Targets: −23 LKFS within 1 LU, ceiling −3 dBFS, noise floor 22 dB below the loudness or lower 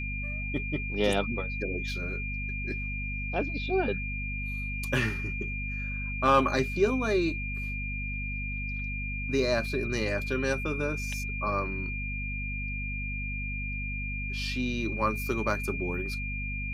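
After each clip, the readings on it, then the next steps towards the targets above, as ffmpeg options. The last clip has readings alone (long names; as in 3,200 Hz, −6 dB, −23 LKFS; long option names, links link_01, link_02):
mains hum 50 Hz; hum harmonics up to 250 Hz; level of the hum −33 dBFS; interfering tone 2,400 Hz; level of the tone −35 dBFS; integrated loudness −30.5 LKFS; sample peak −12.0 dBFS; target loudness −23.0 LKFS
→ -af "bandreject=frequency=50:width_type=h:width=6,bandreject=frequency=100:width_type=h:width=6,bandreject=frequency=150:width_type=h:width=6,bandreject=frequency=200:width_type=h:width=6,bandreject=frequency=250:width_type=h:width=6"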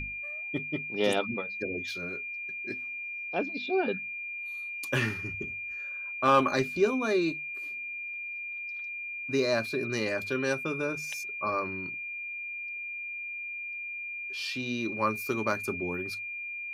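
mains hum none found; interfering tone 2,400 Hz; level of the tone −35 dBFS
→ -af "bandreject=frequency=2400:width=30"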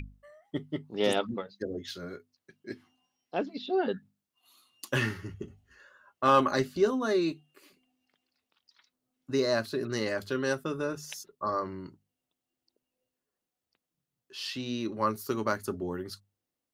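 interfering tone none found; integrated loudness −31.0 LKFS; sample peak −13.0 dBFS; target loudness −23.0 LKFS
→ -af "volume=8dB"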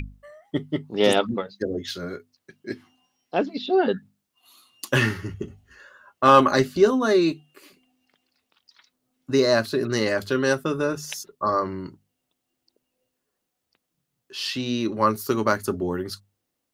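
integrated loudness −23.0 LKFS; sample peak −5.0 dBFS; background noise floor −80 dBFS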